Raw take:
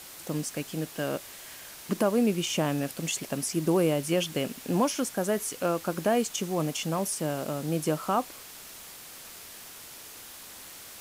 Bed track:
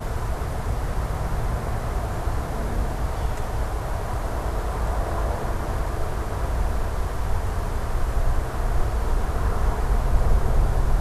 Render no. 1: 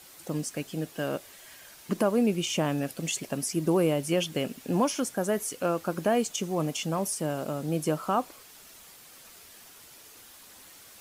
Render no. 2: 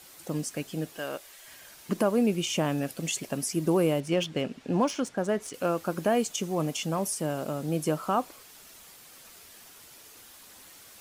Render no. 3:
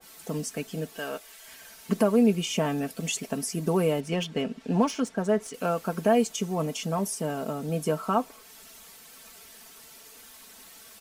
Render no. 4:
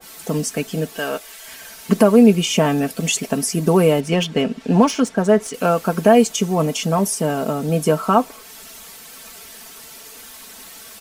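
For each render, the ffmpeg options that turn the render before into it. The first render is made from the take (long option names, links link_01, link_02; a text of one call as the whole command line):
ffmpeg -i in.wav -af "afftdn=noise_reduction=7:noise_floor=-46" out.wav
ffmpeg -i in.wav -filter_complex "[0:a]asettb=1/sr,asplit=3[link_01][link_02][link_03];[link_01]atrim=end=0.984[link_04];[link_02]atrim=start=0.98:end=1.47,asetpts=PTS-STARTPTS,afade=type=in:duration=0.004:curve=qsin,afade=type=out:start_time=0.486:duration=0.004:curve=qsin,equalizer=frequency=150:width_type=o:width=2.7:gain=-12[link_05];[link_03]atrim=start=1.466[link_06];[link_04][link_05]acrossfade=duration=0.004:curve1=hsin:curve2=qsin[link_07];[link_07][link_06]acrossfade=duration=0.004:curve1=qsin:curve2=hsin,asettb=1/sr,asplit=3[link_08][link_09][link_10];[link_08]atrim=end=4.004[link_11];[link_09]atrim=start=4:end=5.54,asetpts=PTS-STARTPTS,afade=type=in:duration=0.004:curve=qsin,afade=type=out:start_time=1.536:duration=0.004:curve=qsin,adynamicsmooth=sensitivity=5:basefreq=4400[link_12];[link_10]atrim=start=5.536[link_13];[link_11][link_12]acrossfade=duration=0.004:curve1=hsin:curve2=qsin[link_14];[link_14][link_13]acrossfade=duration=0.004:curve1=qsin:curve2=hsin" out.wav
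ffmpeg -i in.wav -af "aecho=1:1:4.5:0.65,adynamicequalizer=threshold=0.00708:dfrequency=1800:dqfactor=0.7:tfrequency=1800:tqfactor=0.7:attack=5:release=100:ratio=0.375:range=1.5:mode=cutabove:tftype=highshelf" out.wav
ffmpeg -i in.wav -af "volume=10dB,alimiter=limit=-2dB:level=0:latency=1" out.wav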